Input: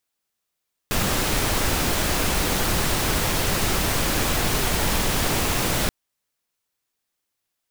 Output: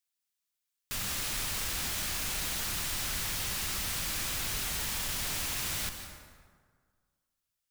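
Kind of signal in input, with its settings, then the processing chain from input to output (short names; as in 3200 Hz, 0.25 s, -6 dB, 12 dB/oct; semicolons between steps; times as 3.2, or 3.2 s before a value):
noise pink, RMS -22 dBFS 4.98 s
passive tone stack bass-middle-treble 5-5-5; overloaded stage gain 31 dB; plate-style reverb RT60 1.8 s, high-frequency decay 0.55×, pre-delay 0.115 s, DRR 6.5 dB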